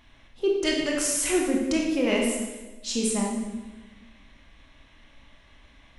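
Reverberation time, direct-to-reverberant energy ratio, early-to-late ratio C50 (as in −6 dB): 1.2 s, −1.0 dB, 2.0 dB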